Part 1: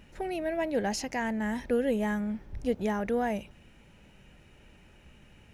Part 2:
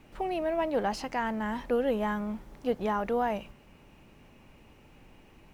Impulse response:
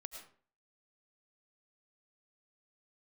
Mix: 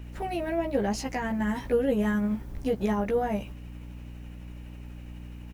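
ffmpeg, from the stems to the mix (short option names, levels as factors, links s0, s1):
-filter_complex "[0:a]tremolo=f=12:d=0.45,aeval=exprs='val(0)+0.00708*(sin(2*PI*60*n/s)+sin(2*PI*2*60*n/s)/2+sin(2*PI*3*60*n/s)/3+sin(2*PI*4*60*n/s)/4+sin(2*PI*5*60*n/s)/5)':c=same,volume=1.41[s0];[1:a]highshelf=f=9200:g=10.5,adelay=15,volume=0.891[s1];[s0][s1]amix=inputs=2:normalize=0,acrossover=split=500[s2][s3];[s3]acompressor=threshold=0.0251:ratio=3[s4];[s2][s4]amix=inputs=2:normalize=0"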